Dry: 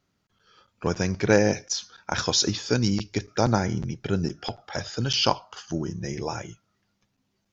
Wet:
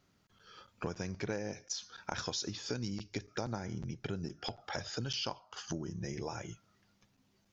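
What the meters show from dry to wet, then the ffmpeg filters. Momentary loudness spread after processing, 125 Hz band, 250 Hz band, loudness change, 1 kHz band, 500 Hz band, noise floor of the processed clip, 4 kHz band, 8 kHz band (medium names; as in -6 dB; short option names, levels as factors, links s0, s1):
8 LU, -13.5 dB, -14.0 dB, -14.0 dB, -14.0 dB, -15.5 dB, -73 dBFS, -13.0 dB, no reading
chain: -af "acompressor=threshold=0.0112:ratio=5,volume=1.26"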